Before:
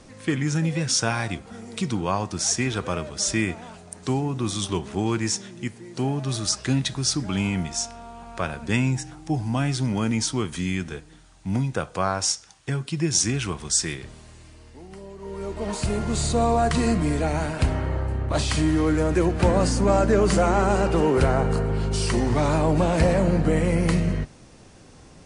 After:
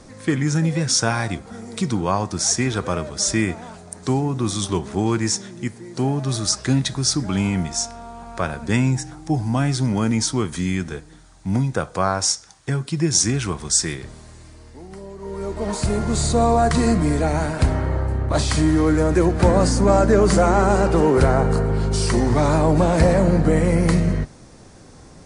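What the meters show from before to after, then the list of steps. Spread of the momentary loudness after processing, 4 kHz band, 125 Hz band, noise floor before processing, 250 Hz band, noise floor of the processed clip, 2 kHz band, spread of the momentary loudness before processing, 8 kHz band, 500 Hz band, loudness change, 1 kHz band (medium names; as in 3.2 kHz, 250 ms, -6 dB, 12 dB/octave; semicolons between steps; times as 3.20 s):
12 LU, +3.0 dB, +4.0 dB, -48 dBFS, +4.0 dB, -44 dBFS, +2.0 dB, 11 LU, +4.0 dB, +4.0 dB, +4.0 dB, +4.0 dB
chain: peaking EQ 2.8 kHz -7 dB 0.53 oct; trim +4 dB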